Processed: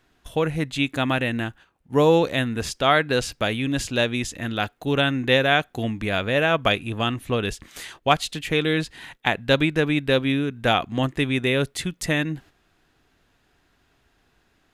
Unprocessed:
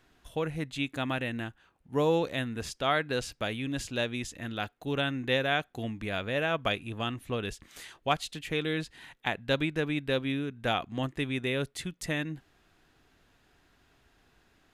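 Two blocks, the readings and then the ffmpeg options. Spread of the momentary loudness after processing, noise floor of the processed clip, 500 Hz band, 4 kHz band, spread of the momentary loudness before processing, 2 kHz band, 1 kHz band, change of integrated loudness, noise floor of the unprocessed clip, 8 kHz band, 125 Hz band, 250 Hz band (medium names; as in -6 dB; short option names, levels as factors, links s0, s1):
9 LU, -65 dBFS, +9.0 dB, +9.0 dB, 9 LU, +9.0 dB, +9.0 dB, +9.0 dB, -67 dBFS, +9.0 dB, +9.0 dB, +9.0 dB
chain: -af "agate=range=0.398:threshold=0.002:ratio=16:detection=peak,volume=2.82"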